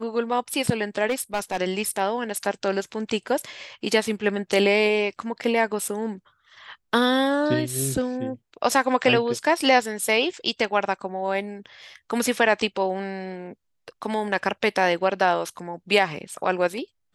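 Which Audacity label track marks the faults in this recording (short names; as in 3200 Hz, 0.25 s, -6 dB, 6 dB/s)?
1.070000	1.610000	clipped -19.5 dBFS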